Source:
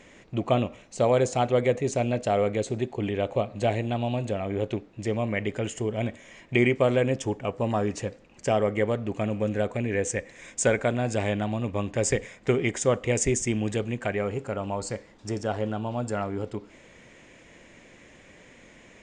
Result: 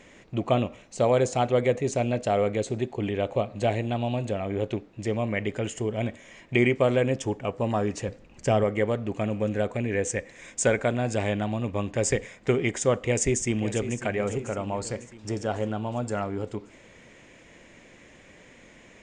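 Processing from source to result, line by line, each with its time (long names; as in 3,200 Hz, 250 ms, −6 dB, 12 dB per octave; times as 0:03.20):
0:08.08–0:08.64: low-shelf EQ 130 Hz +10 dB
0:12.94–0:14.02: delay throw 550 ms, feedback 55%, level −12 dB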